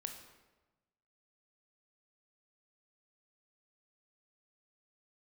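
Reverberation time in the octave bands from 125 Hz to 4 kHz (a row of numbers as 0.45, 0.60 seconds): 1.4, 1.3, 1.2, 1.1, 0.95, 0.80 seconds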